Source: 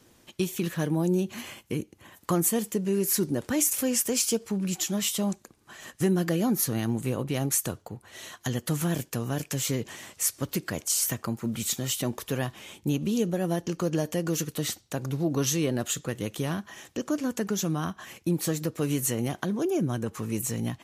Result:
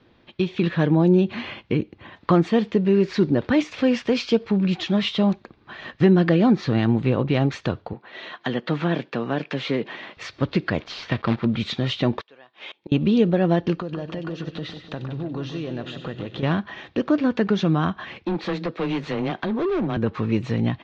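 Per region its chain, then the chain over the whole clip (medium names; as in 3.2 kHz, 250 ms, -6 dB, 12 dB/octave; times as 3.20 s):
7.93–10.17 s: high-pass 150 Hz 24 dB/octave + tone controls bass -5 dB, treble -5 dB
10.80–11.45 s: low-pass 4.5 kHz + companded quantiser 4-bit
12.21–12.92 s: high-pass 470 Hz + treble shelf 9.5 kHz +11 dB + inverted gate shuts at -32 dBFS, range -24 dB
13.76–16.43 s: band-stop 2.2 kHz + compression, threshold -35 dBFS + two-band feedback delay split 2.6 kHz, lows 150 ms, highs 94 ms, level -9 dB
18.25–19.97 s: high-pass 250 Hz 6 dB/octave + frequency shift +15 Hz + overload inside the chain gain 29 dB
whole clip: level rider gain up to 6 dB; steep low-pass 4 kHz 36 dB/octave; band-stop 3 kHz, Q 20; trim +2.5 dB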